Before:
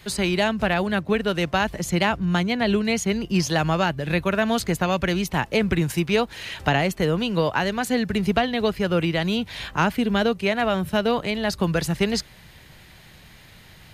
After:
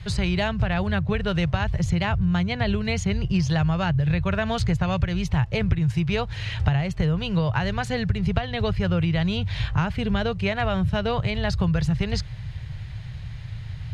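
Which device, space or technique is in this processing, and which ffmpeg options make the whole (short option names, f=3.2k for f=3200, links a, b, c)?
jukebox: -af "lowpass=5.4k,lowshelf=f=170:t=q:w=3:g=14,acompressor=threshold=-19dB:ratio=5"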